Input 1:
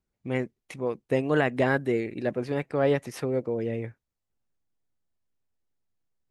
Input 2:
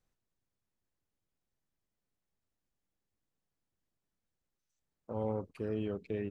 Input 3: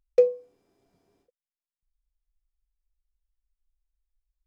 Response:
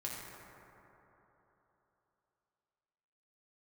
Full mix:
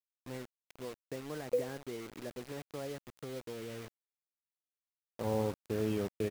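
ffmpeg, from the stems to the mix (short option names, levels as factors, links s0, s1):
-filter_complex "[0:a]acrossover=split=580|1200[s0][s1][s2];[s0]acompressor=threshold=0.0398:ratio=4[s3];[s1]acompressor=threshold=0.0141:ratio=4[s4];[s2]acompressor=threshold=0.00562:ratio=4[s5];[s3][s4][s5]amix=inputs=3:normalize=0,volume=0.224,asplit=2[s6][s7];[1:a]aeval=exprs='val(0)*gte(abs(val(0)),0.00631)':c=same,adelay=100,volume=1.33[s8];[2:a]adelay=1350,volume=0.447[s9];[s7]apad=whole_len=256275[s10];[s9][s10]sidechaincompress=threshold=0.00631:ratio=4:attack=16:release=945[s11];[s6][s8][s11]amix=inputs=3:normalize=0,acrusher=bits=7:mix=0:aa=0.000001"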